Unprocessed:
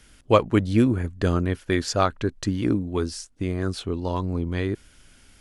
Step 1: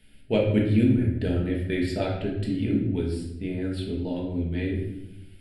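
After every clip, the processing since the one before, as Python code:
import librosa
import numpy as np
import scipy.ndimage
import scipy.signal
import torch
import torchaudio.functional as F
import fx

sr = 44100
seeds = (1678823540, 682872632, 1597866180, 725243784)

y = fx.fixed_phaser(x, sr, hz=2700.0, stages=4)
y = fx.room_shoebox(y, sr, seeds[0], volume_m3=300.0, walls='mixed', distance_m=1.5)
y = y * librosa.db_to_amplitude(-6.0)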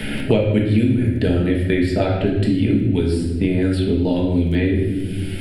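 y = fx.dmg_crackle(x, sr, seeds[1], per_s=22.0, level_db=-54.0)
y = fx.band_squash(y, sr, depth_pct=100)
y = y * librosa.db_to_amplitude(7.5)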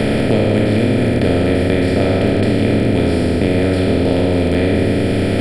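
y = fx.bin_compress(x, sr, power=0.2)
y = y * librosa.db_to_amplitude(-4.0)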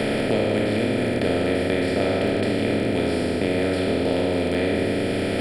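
y = fx.low_shelf(x, sr, hz=190.0, db=-11.5)
y = y * librosa.db_to_amplitude(-4.0)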